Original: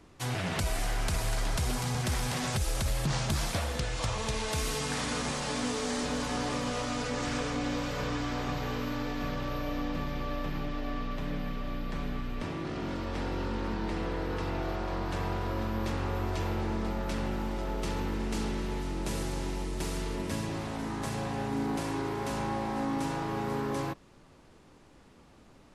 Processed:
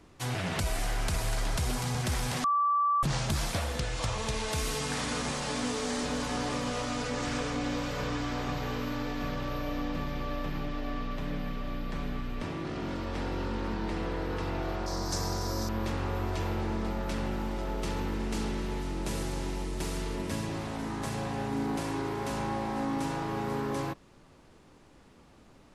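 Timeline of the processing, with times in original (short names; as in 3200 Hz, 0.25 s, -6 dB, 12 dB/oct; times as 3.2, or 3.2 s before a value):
2.44–3.03 bleep 1160 Hz -23 dBFS
14.86–15.69 resonant high shelf 4000 Hz +11.5 dB, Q 3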